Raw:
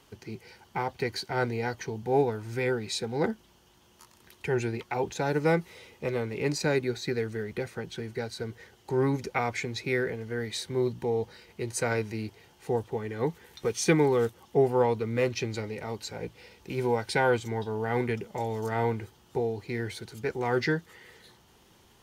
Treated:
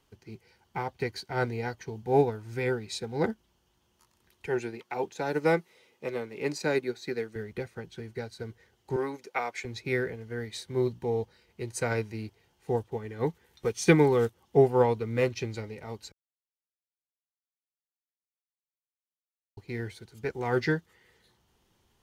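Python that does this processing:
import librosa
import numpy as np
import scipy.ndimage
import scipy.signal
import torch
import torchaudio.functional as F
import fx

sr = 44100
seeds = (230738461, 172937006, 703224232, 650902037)

y = fx.highpass(x, sr, hz=210.0, slope=12, at=(4.46, 7.36))
y = fx.highpass(y, sr, hz=390.0, slope=12, at=(8.96, 9.65))
y = fx.edit(y, sr, fx.silence(start_s=16.12, length_s=3.45), tone=tone)
y = fx.low_shelf(y, sr, hz=74.0, db=8.5)
y = fx.upward_expand(y, sr, threshold_db=-46.0, expansion=1.5)
y = y * librosa.db_to_amplitude(3.0)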